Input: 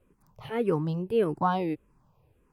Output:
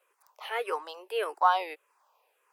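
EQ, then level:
Bessel high-pass filter 900 Hz, order 8
+7.0 dB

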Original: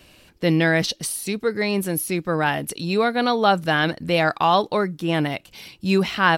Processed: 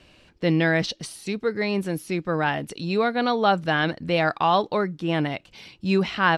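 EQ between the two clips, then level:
high-frequency loss of the air 78 metres
−2.0 dB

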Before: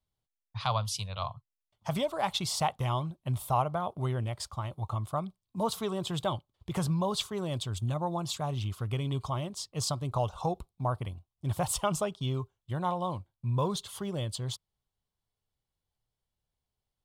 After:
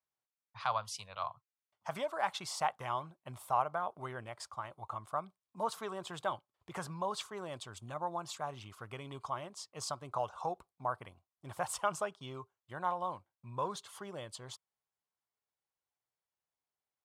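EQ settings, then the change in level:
parametric band 3,500 Hz −11 dB 1.2 octaves
dynamic equaliser 1,600 Hz, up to +5 dB, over −55 dBFS, Q 4
resonant band-pass 2,200 Hz, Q 0.55
+1.5 dB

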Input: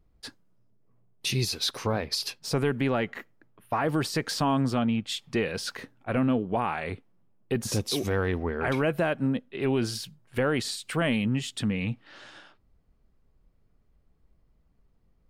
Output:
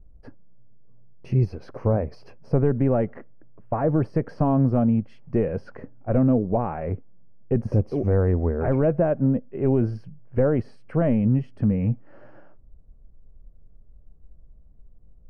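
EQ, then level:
moving average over 12 samples
spectral tilt −4 dB per octave
parametric band 580 Hz +8 dB 0.73 octaves
−3.5 dB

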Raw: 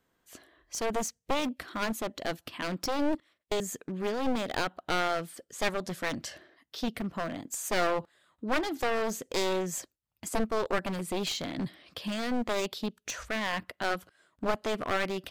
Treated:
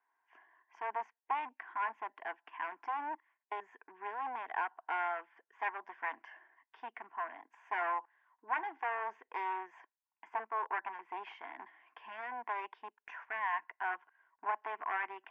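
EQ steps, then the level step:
four-pole ladder band-pass 1,200 Hz, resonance 60%
high-frequency loss of the air 290 metres
phaser with its sweep stopped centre 830 Hz, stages 8
+11.5 dB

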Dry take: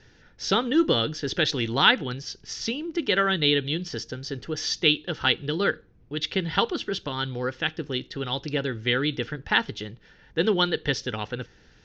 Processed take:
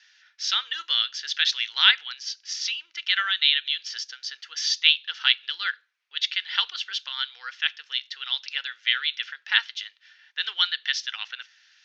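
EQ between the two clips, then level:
Bessel high-pass filter 2,400 Hz, order 4
high-frequency loss of the air 67 metres
+7.5 dB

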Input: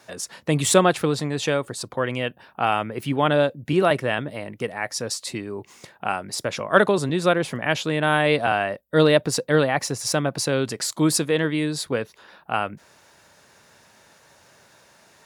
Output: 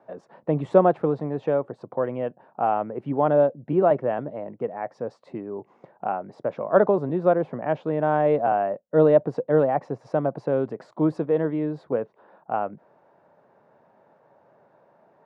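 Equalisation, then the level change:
Chebyshev band-pass filter 140–730 Hz, order 2
low-shelf EQ 330 Hz −9 dB
+4.0 dB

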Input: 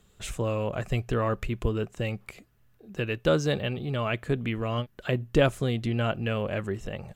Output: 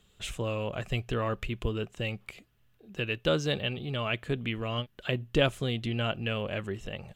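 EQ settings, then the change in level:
parametric band 3,100 Hz +8 dB 0.85 octaves
−4.0 dB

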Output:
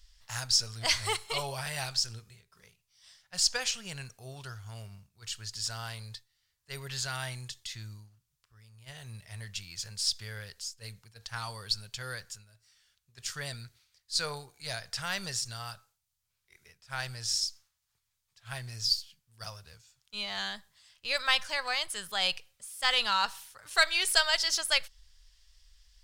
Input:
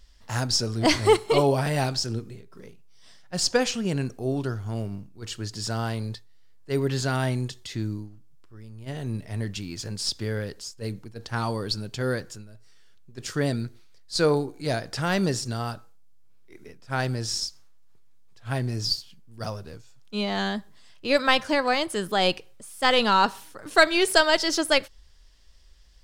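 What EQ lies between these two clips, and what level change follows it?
guitar amp tone stack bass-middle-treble 10-0-10
0.0 dB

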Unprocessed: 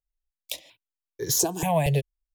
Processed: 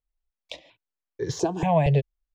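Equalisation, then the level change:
high-frequency loss of the air 91 metres
high-shelf EQ 3,100 Hz −8 dB
parametric band 11,000 Hz −13.5 dB 0.74 octaves
+3.0 dB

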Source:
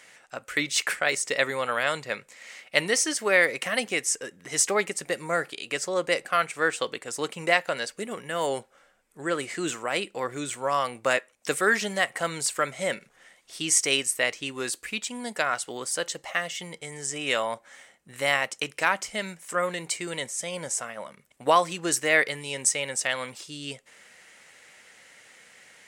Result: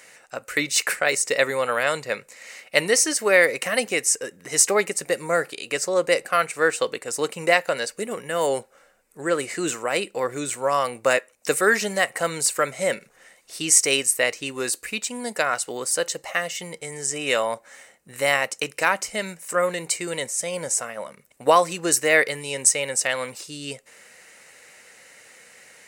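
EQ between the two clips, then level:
parametric band 490 Hz +4.5 dB 0.58 octaves
high-shelf EQ 9,700 Hz +9 dB
notch filter 3,300 Hz, Q 7.8
+2.5 dB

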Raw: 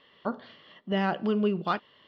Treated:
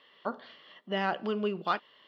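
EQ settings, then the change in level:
high-pass filter 460 Hz 6 dB per octave
0.0 dB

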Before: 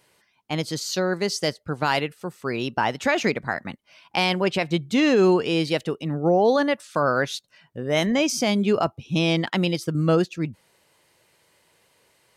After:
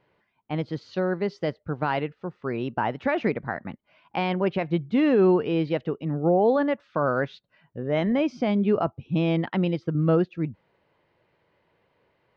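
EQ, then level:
high-frequency loss of the air 230 metres
head-to-tape spacing loss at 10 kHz 23 dB
0.0 dB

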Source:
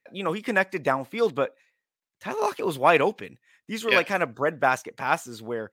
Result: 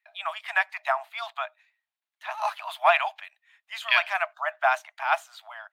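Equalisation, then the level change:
Chebyshev high-pass filter 620 Hz, order 10
high shelf with overshoot 4,500 Hz −6.5 dB, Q 1.5
0.0 dB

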